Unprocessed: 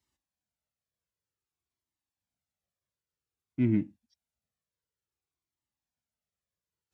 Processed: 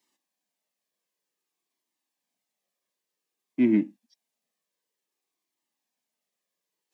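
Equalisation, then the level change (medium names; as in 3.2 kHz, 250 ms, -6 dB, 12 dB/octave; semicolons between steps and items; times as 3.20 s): high-pass 220 Hz 24 dB/octave; Butterworth band-stop 1.4 kHz, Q 5.8; +7.5 dB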